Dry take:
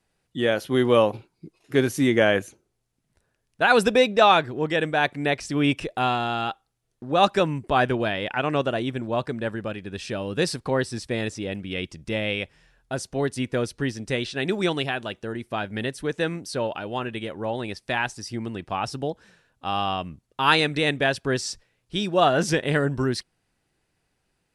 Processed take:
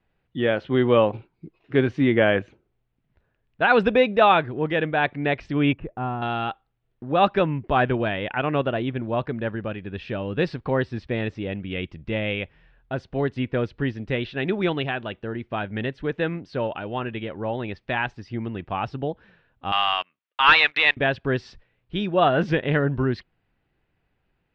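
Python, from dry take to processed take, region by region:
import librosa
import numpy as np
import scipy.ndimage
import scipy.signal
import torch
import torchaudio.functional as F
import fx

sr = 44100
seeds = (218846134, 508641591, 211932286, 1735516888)

y = fx.chain(x, sr, fx.lowpass(hz=1000.0, slope=12),
    fx.peak_eq(hz=550.0, db=-6.5, octaves=1.5), at=(5.73, 6.22))
y = fx.chain(y, sr, fx.highpass(hz=1400.0, slope=12),
    fx.leveller(passes=3), at=(19.72, 20.97))
y = scipy.signal.sosfilt(scipy.signal.butter(4, 3200.0, 'lowpass', fs=sr, output='sos'), y)
y = fx.low_shelf(y, sr, hz=110.0, db=6.0)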